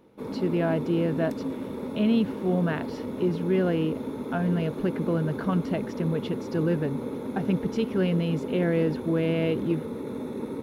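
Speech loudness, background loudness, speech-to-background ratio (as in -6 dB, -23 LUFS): -27.5 LUFS, -33.5 LUFS, 6.0 dB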